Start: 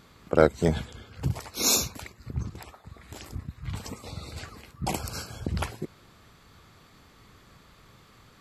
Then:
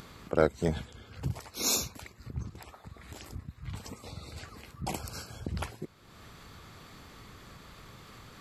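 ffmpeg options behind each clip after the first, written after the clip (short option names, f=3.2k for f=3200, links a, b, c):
-af "acompressor=mode=upward:threshold=-34dB:ratio=2.5,volume=-5.5dB"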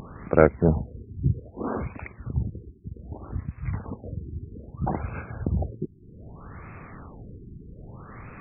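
-af "bass=f=250:g=3,treble=f=4k:g=12,afftfilt=real='re*lt(b*sr/1024,410*pow(2700/410,0.5+0.5*sin(2*PI*0.63*pts/sr)))':imag='im*lt(b*sr/1024,410*pow(2700/410,0.5+0.5*sin(2*PI*0.63*pts/sr)))':win_size=1024:overlap=0.75,volume=7.5dB"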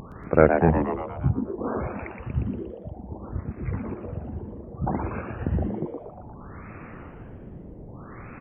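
-filter_complex "[0:a]asplit=8[a][b][c][d][e][f][g][h];[b]adelay=118,afreqshift=130,volume=-6.5dB[i];[c]adelay=236,afreqshift=260,volume=-11.5dB[j];[d]adelay=354,afreqshift=390,volume=-16.6dB[k];[e]adelay=472,afreqshift=520,volume=-21.6dB[l];[f]adelay=590,afreqshift=650,volume=-26.6dB[m];[g]adelay=708,afreqshift=780,volume=-31.7dB[n];[h]adelay=826,afreqshift=910,volume=-36.7dB[o];[a][i][j][k][l][m][n][o]amix=inputs=8:normalize=0"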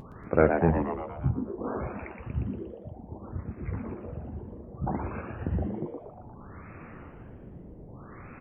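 -af "flanger=delay=7.3:depth=9.8:regen=-68:speed=0.33:shape=triangular"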